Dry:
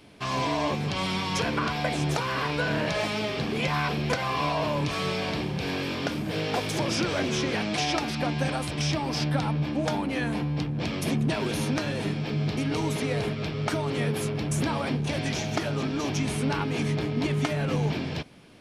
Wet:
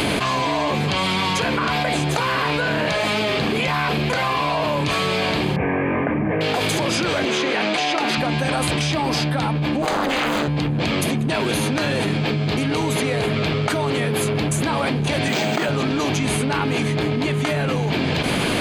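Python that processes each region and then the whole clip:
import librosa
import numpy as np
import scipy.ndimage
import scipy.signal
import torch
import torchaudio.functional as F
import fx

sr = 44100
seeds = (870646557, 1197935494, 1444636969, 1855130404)

y = fx.chain(x, sr, fx.steep_lowpass(hz=2200.0, slope=48),
    fx.notch(hz=1400.0, q=5.7), at=(5.56, 6.41))
y = fx.chain(y, sr, fx.highpass(hz=270.0, slope=12),
    fx.high_shelf(hz=7000.0, db=-8.0),
    fx.doppler_dist(depth_ms=0.1), at=(7.25, 8.18))
y = fx.chain(y, sr, fx.highpass(hz=380.0, slope=6),
    fx.doppler_dist(depth_ms=0.9), at=(9.82, 10.48))
y = fx.chain(y, sr, fx.highpass(hz=160.0, slope=24),
    fx.resample_linear(factor=4), at=(15.28, 15.69))
y = fx.low_shelf(y, sr, hz=320.0, db=-5.0)
y = fx.notch(y, sr, hz=5500.0, q=5.0)
y = fx.env_flatten(y, sr, amount_pct=100)
y = y * 10.0 ** (3.5 / 20.0)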